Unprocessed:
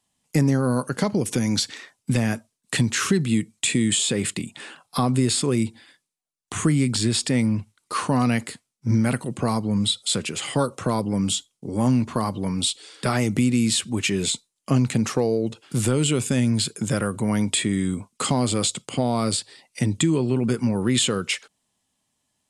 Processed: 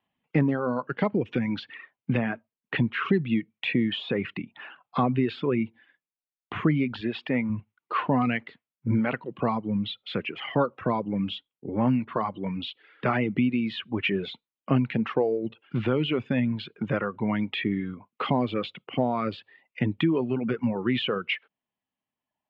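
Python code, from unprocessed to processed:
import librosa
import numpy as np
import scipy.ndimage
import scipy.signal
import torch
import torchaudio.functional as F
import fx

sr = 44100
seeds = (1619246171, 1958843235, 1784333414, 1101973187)

y = fx.high_shelf(x, sr, hz=fx.line((2.15, 8200.0), (3.04, 4200.0)), db=-11.5, at=(2.15, 3.04), fade=0.02)
y = fx.low_shelf(y, sr, hz=130.0, db=-8.5, at=(7.01, 7.5))
y = scipy.signal.sosfilt(scipy.signal.butter(6, 3000.0, 'lowpass', fs=sr, output='sos'), y)
y = fx.dereverb_blind(y, sr, rt60_s=1.5)
y = fx.low_shelf(y, sr, hz=100.0, db=-11.5)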